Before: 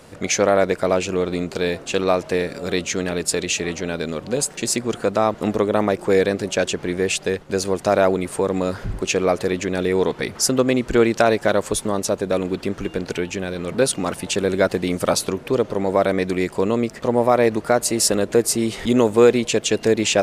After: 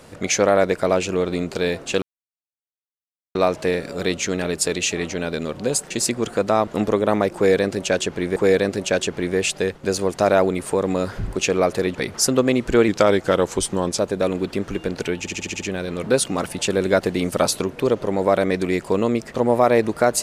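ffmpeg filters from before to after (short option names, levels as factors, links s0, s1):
-filter_complex "[0:a]asplit=12[s0][s1][s2][s3][s4][s5][s6][s7][s8][s9][s10][s11];[s0]atrim=end=2.02,asetpts=PTS-STARTPTS,afade=t=out:st=2.016:d=0.004:c=hsin,apad=pad_dur=1.33[s12];[s1]atrim=start=2.02:end=7.032,asetpts=PTS-STARTPTS,afade=t=in:d=0.004:c=hsin[s13];[s2]atrim=start=6.018:end=9.612[s14];[s3]atrim=start=10.158:end=11.094[s15];[s4]atrim=start=11.09:end=12.08,asetpts=PTS-STARTPTS,asetrate=39690,aresample=44100[s16];[s5]atrim=start=12.076:end=13.362[s17];[s6]atrim=start=13.288:end=13.362[s18];[s7]atrim=start=13.288:end=13.362[s19];[s8]atrim=start=13.288:end=13.362[s20];[s9]atrim=start=13.288:end=13.362[s21];[s10]atrim=start=13.288:end=13.362[s22];[s11]atrim=start=13.288[s23];[s12][s13]concat=n=2:v=0:a=1[s24];[s24][s14]acrossfade=d=0.004:c1=hsin:c2=hsin[s25];[s25][s15]acrossfade=d=0.004:c1=hsin:c2=hsin[s26];[s26][s16]acrossfade=d=0.004:c1=hsin:c2=hsin[s27];[s27][s17]acrossfade=d=0.004:c1=hsin:c2=hsin[s28];[s28][s18]acrossfade=d=0.004:c1=hsin:c2=hsin[s29];[s29][s19]acrossfade=d=0.004:c1=hsin:c2=hsin[s30];[s30][s20]acrossfade=d=0.004:c1=hsin:c2=hsin[s31];[s31][s21]acrossfade=d=0.004:c1=hsin:c2=hsin[s32];[s32][s22]acrossfade=d=0.004:c1=hsin:c2=hsin[s33];[s33][s23]acrossfade=d=0.004:c1=hsin:c2=hsin"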